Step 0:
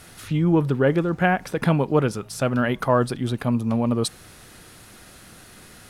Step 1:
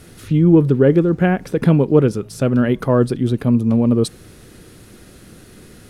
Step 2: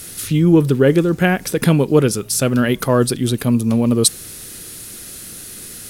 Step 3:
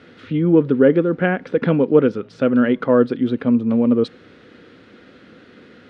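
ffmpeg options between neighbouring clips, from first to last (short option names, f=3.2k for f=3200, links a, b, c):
-af "lowshelf=f=570:t=q:w=1.5:g=7.5,volume=-1dB"
-af "crystalizer=i=7:c=0,volume=-1dB"
-af "highpass=120,equalizer=f=130:t=q:w=4:g=-5,equalizer=f=260:t=q:w=4:g=8,equalizer=f=500:t=q:w=4:g=8,equalizer=f=1.4k:t=q:w=4:g=4,equalizer=f=2.6k:t=q:w=4:g=-4,lowpass=f=2.9k:w=0.5412,lowpass=f=2.9k:w=1.3066,volume=-4.5dB"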